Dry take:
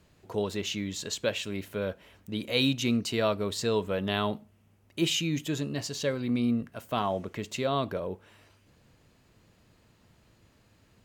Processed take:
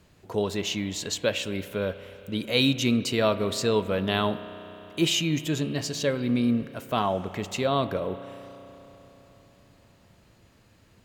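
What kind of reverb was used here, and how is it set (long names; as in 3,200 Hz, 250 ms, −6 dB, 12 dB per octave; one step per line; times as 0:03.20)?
spring reverb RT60 3.9 s, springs 32 ms, chirp 75 ms, DRR 12.5 dB
level +3.5 dB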